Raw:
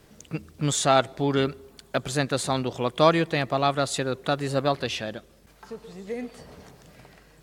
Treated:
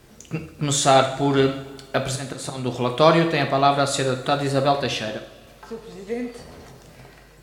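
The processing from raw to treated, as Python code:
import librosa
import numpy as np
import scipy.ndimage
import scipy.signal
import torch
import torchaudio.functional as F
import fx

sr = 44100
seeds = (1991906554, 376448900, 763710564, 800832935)

y = fx.auto_swell(x, sr, attack_ms=203.0, at=(2.03, 2.74))
y = fx.rev_double_slope(y, sr, seeds[0], early_s=0.59, late_s=2.4, knee_db=-18, drr_db=4.0)
y = y * librosa.db_to_amplitude(3.0)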